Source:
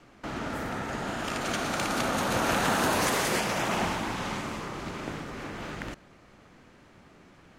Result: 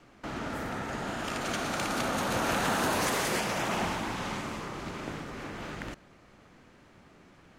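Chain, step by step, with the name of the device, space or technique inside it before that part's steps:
parallel distortion (in parallel at −10.5 dB: hard clipping −27 dBFS, distortion −10 dB)
on the sum: level −4 dB

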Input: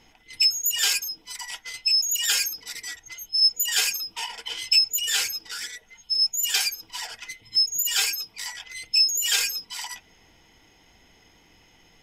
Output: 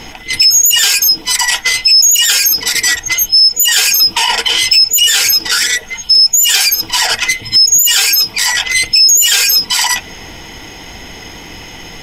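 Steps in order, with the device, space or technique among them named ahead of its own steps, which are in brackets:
loud club master (downward compressor 2 to 1, threshold −27 dBFS, peak gain reduction 7.5 dB; hard clipping −18 dBFS, distortion −30 dB; boost into a limiter +27.5 dB)
level −1 dB

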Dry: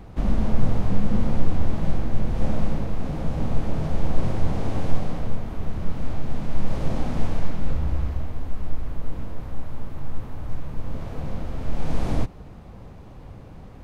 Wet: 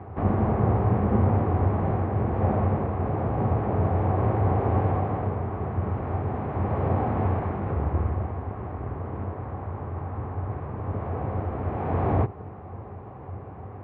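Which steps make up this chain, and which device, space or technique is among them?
sub-octave bass pedal (sub-octave generator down 2 octaves, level +1 dB; loudspeaker in its box 81–2,100 Hz, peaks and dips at 93 Hz +9 dB, 160 Hz −6 dB, 250 Hz −3 dB, 400 Hz +7 dB, 760 Hz +8 dB, 1,100 Hz +6 dB)
level +2 dB

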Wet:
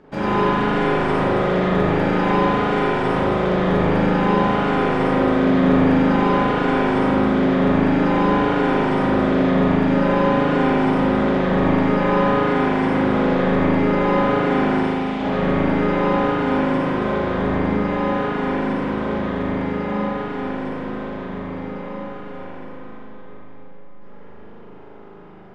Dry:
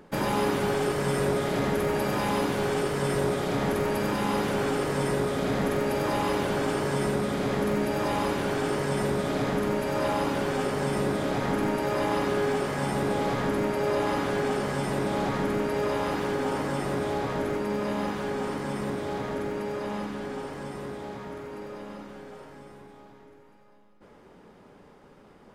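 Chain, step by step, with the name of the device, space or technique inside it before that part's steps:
0:14.79–0:15.21: Butterworth high-pass 2,200 Hz
high-frequency loss of the air 120 metres
dub delay into a spring reverb (feedback echo with a low-pass in the loop 461 ms, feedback 62%, low-pass 2,400 Hz, level −10 dB; spring reverb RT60 2.2 s, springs 38 ms, chirp 55 ms, DRR −8.5 dB)

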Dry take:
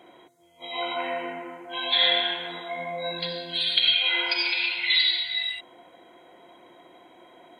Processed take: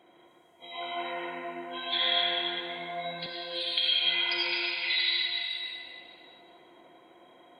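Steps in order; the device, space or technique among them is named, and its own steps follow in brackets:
stairwell (convolution reverb RT60 2.6 s, pre-delay 97 ms, DRR −1.5 dB)
0:03.26–0:04.05: high-pass filter 260 Hz 24 dB per octave
level −8 dB

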